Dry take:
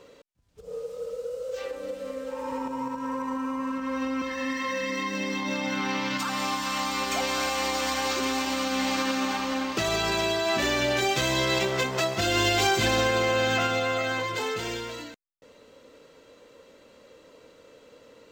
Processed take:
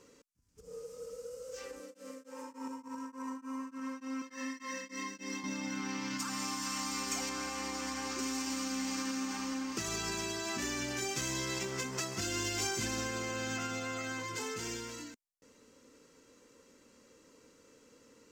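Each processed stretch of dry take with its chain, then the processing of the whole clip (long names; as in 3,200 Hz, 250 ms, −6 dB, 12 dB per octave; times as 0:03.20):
0:01.80–0:05.44: high-pass filter 260 Hz + tremolo along a rectified sine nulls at 3.4 Hz
0:07.29–0:08.19: high-pass filter 43 Hz + high-shelf EQ 4,100 Hz −9.5 dB
whole clip: graphic EQ with 15 bands 250 Hz +5 dB, 630 Hz −10 dB, 4,000 Hz −8 dB, 10,000 Hz −4 dB; downward compressor 2.5 to 1, threshold −29 dBFS; flat-topped bell 7,400 Hz +11 dB; level −7 dB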